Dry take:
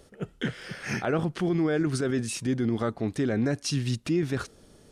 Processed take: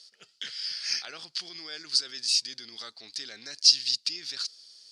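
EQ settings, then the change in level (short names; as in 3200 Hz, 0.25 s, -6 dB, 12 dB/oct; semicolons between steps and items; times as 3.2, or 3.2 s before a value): synth low-pass 4700 Hz, resonance Q 8.4; differentiator; high shelf 2100 Hz +9.5 dB; -1.0 dB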